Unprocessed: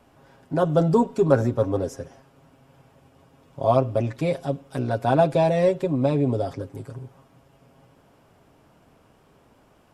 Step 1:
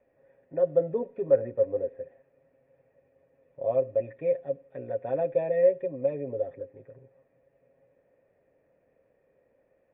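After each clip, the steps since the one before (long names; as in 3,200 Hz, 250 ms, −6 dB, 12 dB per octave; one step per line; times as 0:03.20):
formant resonators in series e
level +1 dB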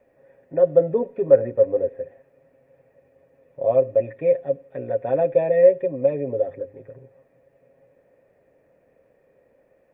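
mains-hum notches 50/100 Hz
level +7.5 dB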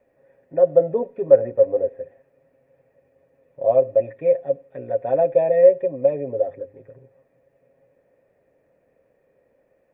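dynamic equaliser 690 Hz, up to +7 dB, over −30 dBFS, Q 1.6
level −3 dB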